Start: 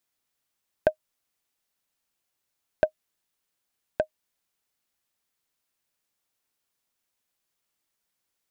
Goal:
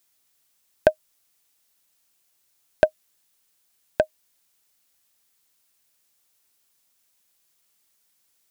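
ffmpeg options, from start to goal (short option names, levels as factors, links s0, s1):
-af "highshelf=f=3600:g=8.5,volume=1.88"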